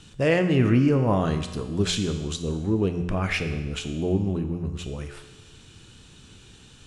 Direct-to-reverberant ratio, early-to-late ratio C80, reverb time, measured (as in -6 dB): 6.5 dB, 11.0 dB, 1.2 s